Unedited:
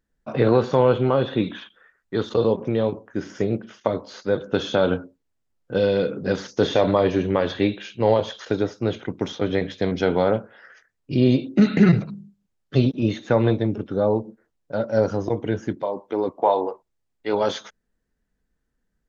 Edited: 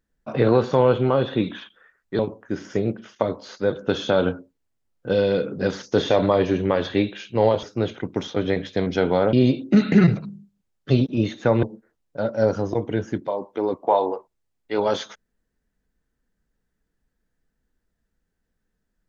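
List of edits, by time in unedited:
2.19–2.84 s: delete
8.28–8.68 s: delete
10.38–11.18 s: delete
13.48–14.18 s: delete

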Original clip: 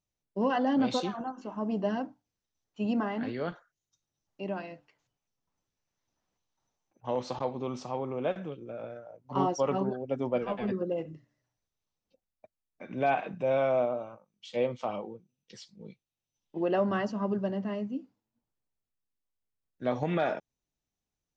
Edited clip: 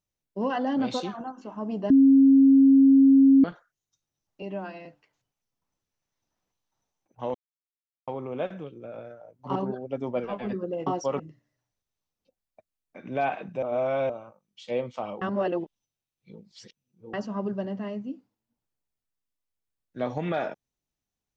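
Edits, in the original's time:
1.90–3.44 s: bleep 271 Hz -12.5 dBFS
4.42–4.71 s: stretch 1.5×
7.20–7.93 s: mute
9.41–9.74 s: move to 11.05 s
13.48–13.95 s: reverse
15.07–16.99 s: reverse

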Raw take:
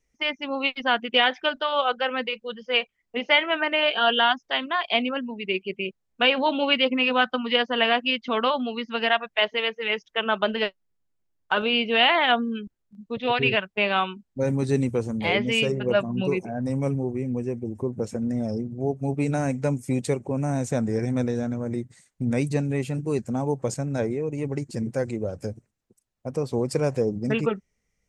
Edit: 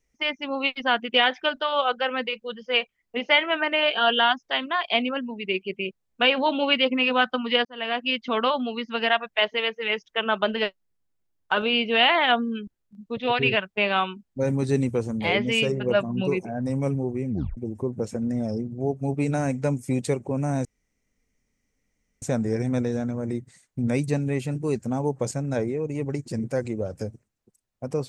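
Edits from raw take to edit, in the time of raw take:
7.65–8.16 s: fade in linear
17.30 s: tape stop 0.27 s
20.65 s: insert room tone 1.57 s

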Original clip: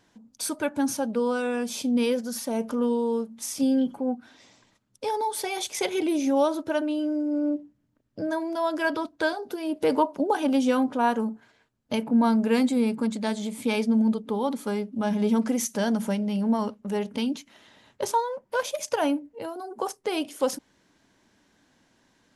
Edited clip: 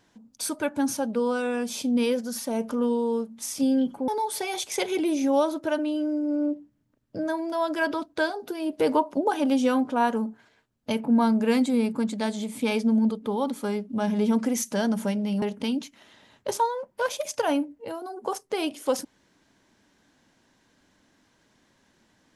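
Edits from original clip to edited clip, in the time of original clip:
4.08–5.11 s: delete
16.45–16.96 s: delete

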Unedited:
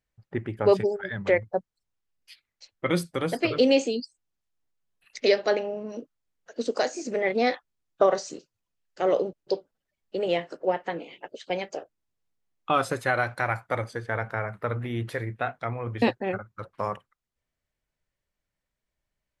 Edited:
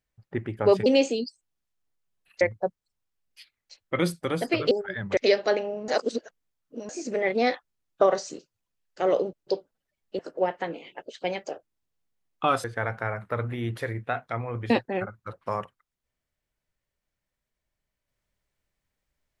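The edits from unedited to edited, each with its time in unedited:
0.86–1.32 s: swap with 3.62–5.17 s
5.88–6.89 s: reverse
10.19–10.45 s: delete
12.90–13.96 s: delete

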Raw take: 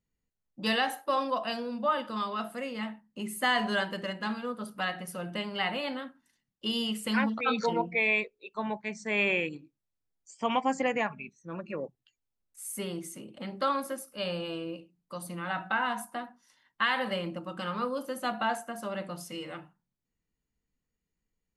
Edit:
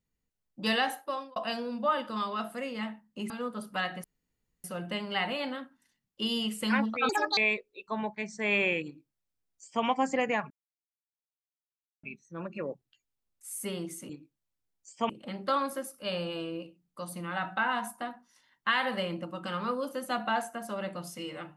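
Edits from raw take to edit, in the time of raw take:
0.90–1.36 s: fade out
3.30–4.34 s: delete
5.08 s: insert room tone 0.60 s
7.53–8.04 s: speed 180%
9.51–10.51 s: copy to 13.23 s
11.17 s: insert silence 1.53 s

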